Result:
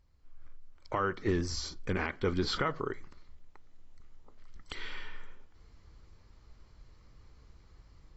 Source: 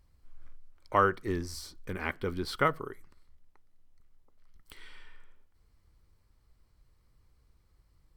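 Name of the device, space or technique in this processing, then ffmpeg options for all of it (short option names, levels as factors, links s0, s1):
low-bitrate web radio: -af "dynaudnorm=f=480:g=3:m=3.98,alimiter=limit=0.141:level=0:latency=1:release=245,volume=0.708" -ar 22050 -c:a aac -b:a 24k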